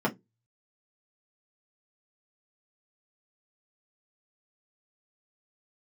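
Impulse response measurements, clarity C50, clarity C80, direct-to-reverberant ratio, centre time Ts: 21.0 dB, 31.5 dB, −4.0 dB, 11 ms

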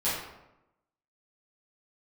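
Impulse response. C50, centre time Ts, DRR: 1.0 dB, 64 ms, −12.0 dB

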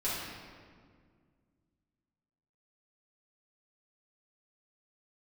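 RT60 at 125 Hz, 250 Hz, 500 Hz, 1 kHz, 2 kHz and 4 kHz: 2.8, 2.7, 2.1, 1.7, 1.5, 1.2 seconds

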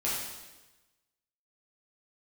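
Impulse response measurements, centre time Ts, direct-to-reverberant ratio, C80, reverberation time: 74 ms, −8.0 dB, 2.5 dB, 1.1 s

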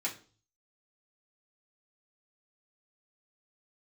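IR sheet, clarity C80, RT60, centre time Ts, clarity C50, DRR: 17.5 dB, 0.40 s, 15 ms, 12.5 dB, −6.5 dB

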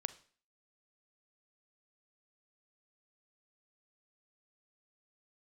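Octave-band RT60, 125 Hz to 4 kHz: 0.45, 0.50, 0.45, 0.45, 0.45, 0.45 seconds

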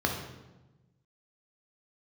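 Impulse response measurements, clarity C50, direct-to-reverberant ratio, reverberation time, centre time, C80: 5.0 dB, 1.0 dB, 1.1 s, 35 ms, 7.5 dB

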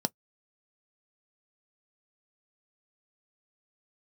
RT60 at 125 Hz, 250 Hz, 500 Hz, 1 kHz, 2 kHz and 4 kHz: 0.10, 0.10, 0.10, 0.10, 0.10, 0.10 seconds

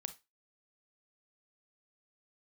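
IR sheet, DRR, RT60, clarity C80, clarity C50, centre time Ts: 10.0 dB, 0.25 s, 24.0 dB, 14.5 dB, 5 ms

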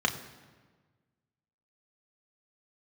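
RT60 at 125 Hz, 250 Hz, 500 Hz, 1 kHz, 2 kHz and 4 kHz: 1.9, 1.7, 1.5, 1.4, 1.3, 1.0 seconds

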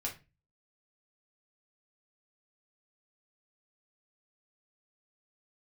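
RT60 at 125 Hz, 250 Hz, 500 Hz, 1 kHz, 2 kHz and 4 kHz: 0.50, 0.40, 0.30, 0.25, 0.30, 0.25 seconds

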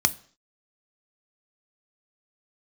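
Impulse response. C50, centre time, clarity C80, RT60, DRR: 21.0 dB, 2 ms, 24.5 dB, 0.50 s, 12.0 dB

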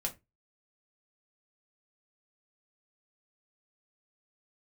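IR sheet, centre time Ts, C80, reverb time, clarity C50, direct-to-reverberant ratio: 9 ms, 25.5 dB, 0.20 s, 16.5 dB, 1.0 dB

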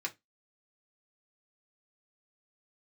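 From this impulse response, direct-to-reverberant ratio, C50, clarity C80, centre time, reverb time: −0.5 dB, 21.5 dB, 32.5 dB, 7 ms, 0.15 s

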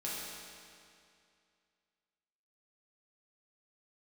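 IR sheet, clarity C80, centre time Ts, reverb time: −0.5 dB, 144 ms, 2.4 s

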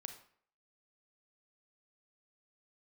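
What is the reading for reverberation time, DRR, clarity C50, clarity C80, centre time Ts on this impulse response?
0.55 s, 6.5 dB, 9.0 dB, 12.5 dB, 14 ms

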